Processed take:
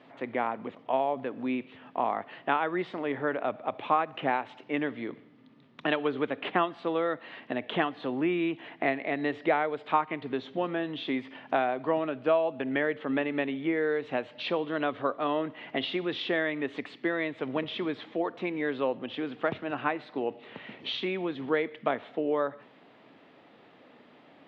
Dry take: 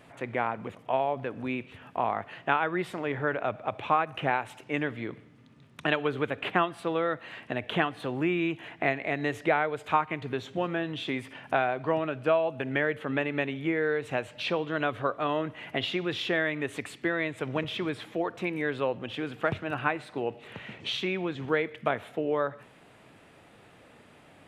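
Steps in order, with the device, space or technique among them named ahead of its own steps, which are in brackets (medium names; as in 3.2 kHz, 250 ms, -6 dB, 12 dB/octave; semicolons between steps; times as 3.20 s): 9.08–10.34 s: band-stop 6.3 kHz, Q 6.2; kitchen radio (cabinet simulation 210–4300 Hz, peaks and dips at 260 Hz +5 dB, 1.5 kHz -4 dB, 2.5 kHz -4 dB)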